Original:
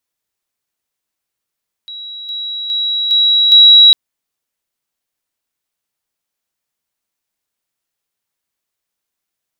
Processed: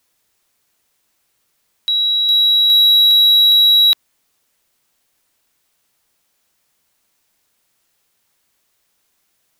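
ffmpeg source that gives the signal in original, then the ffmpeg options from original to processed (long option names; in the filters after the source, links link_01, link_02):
-f lavfi -i "aevalsrc='pow(10,(-26+6*floor(t/0.41))/20)*sin(2*PI*3880*t)':duration=2.05:sample_rate=44100"
-filter_complex "[0:a]apsyclip=14dB,acrossover=split=3100[link_01][link_02];[link_02]acompressor=threshold=-13dB:ratio=4:attack=1:release=60[link_03];[link_01][link_03]amix=inputs=2:normalize=0,asoftclip=type=tanh:threshold=-6.5dB"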